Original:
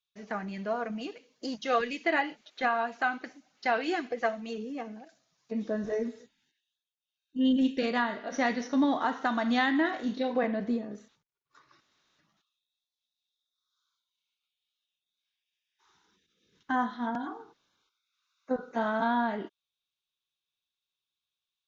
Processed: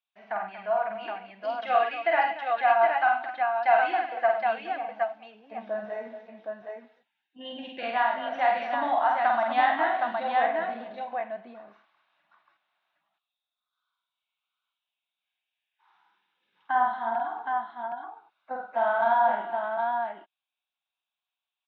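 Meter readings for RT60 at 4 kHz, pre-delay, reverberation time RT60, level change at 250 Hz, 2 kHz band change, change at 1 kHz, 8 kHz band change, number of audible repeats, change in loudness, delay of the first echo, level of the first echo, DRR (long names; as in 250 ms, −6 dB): no reverb audible, no reverb audible, no reverb audible, −13.5 dB, +3.5 dB, +9.0 dB, can't be measured, 5, +4.0 dB, 48 ms, −3.5 dB, no reverb audible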